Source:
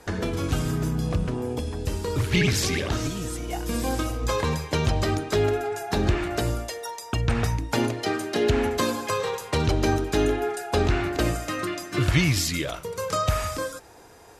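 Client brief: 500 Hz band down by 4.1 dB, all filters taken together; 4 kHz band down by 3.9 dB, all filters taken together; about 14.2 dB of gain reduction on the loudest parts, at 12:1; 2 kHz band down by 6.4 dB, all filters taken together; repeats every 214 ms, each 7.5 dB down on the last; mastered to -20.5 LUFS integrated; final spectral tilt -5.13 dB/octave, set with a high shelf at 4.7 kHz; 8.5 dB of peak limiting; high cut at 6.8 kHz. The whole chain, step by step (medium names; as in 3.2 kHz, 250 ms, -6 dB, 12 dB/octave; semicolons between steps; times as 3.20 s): low-pass 6.8 kHz; peaking EQ 500 Hz -5 dB; peaking EQ 2 kHz -7.5 dB; peaking EQ 4 kHz -4.5 dB; treble shelf 4.7 kHz +4.5 dB; compression 12:1, threshold -32 dBFS; peak limiter -27.5 dBFS; feedback delay 214 ms, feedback 42%, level -7.5 dB; trim +17 dB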